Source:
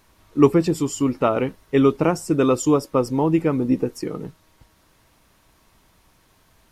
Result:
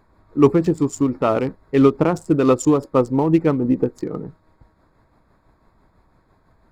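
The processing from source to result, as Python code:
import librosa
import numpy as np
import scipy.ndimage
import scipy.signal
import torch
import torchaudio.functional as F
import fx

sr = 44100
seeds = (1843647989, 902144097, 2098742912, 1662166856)

y = fx.wiener(x, sr, points=15)
y = y * (1.0 - 0.38 / 2.0 + 0.38 / 2.0 * np.cos(2.0 * np.pi * 6.0 * (np.arange(len(y)) / sr)))
y = F.gain(torch.from_numpy(y), 4.0).numpy()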